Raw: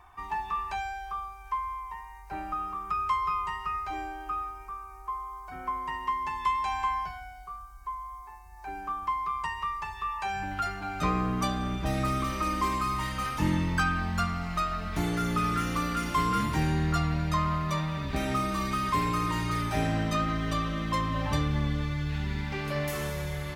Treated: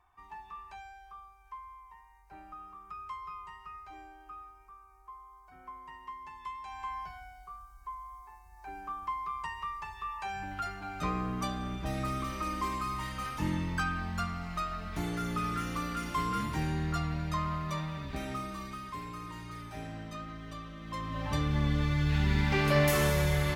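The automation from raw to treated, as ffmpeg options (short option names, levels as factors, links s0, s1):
-af "volume=5.31,afade=t=in:st=6.67:d=0.54:silence=0.375837,afade=t=out:st=17.84:d=1.05:silence=0.375837,afade=t=in:st=20.8:d=0.47:silence=0.354813,afade=t=in:st=21.27:d=1.32:silence=0.281838"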